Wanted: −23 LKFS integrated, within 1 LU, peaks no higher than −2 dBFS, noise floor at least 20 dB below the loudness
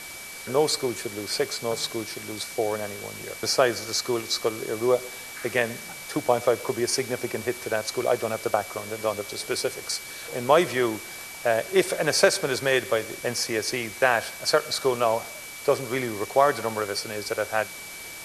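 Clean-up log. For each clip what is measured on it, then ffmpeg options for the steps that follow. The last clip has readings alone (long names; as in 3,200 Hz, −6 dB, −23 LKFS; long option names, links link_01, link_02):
interfering tone 2,300 Hz; level of the tone −41 dBFS; background noise floor −39 dBFS; target noise floor −46 dBFS; integrated loudness −25.5 LKFS; sample peak −2.5 dBFS; target loudness −23.0 LKFS
→ -af "bandreject=frequency=2300:width=30"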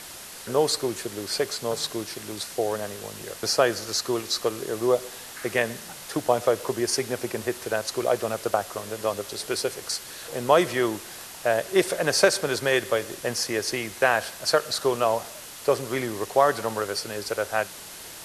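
interfering tone none found; background noise floor −41 dBFS; target noise floor −46 dBFS
→ -af "afftdn=noise_reduction=6:noise_floor=-41"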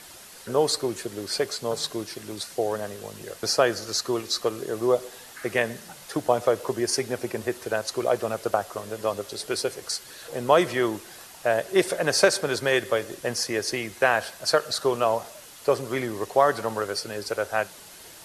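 background noise floor −46 dBFS; integrated loudness −26.0 LKFS; sample peak −2.5 dBFS; target loudness −23.0 LKFS
→ -af "volume=3dB,alimiter=limit=-2dB:level=0:latency=1"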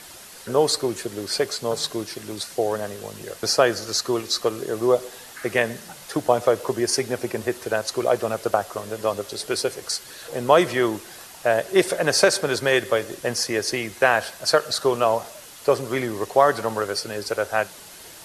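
integrated loudness −23.0 LKFS; sample peak −2.0 dBFS; background noise floor −43 dBFS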